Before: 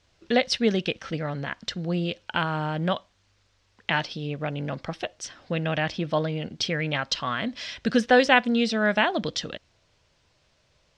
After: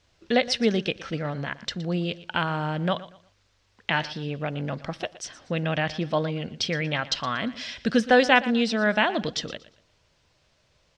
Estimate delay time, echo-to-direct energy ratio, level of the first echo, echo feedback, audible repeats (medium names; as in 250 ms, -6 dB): 118 ms, -16.5 dB, -17.0 dB, 29%, 2